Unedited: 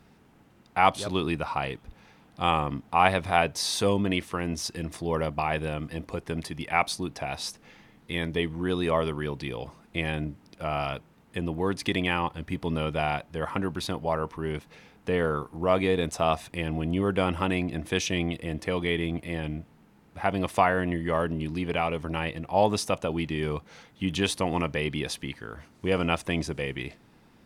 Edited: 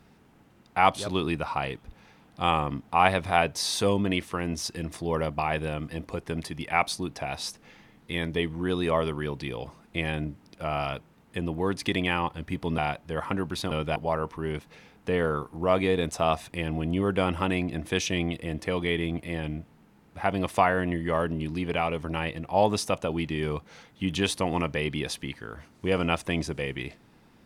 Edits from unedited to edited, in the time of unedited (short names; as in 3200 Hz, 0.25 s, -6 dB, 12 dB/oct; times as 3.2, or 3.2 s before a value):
12.78–13.03 move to 13.96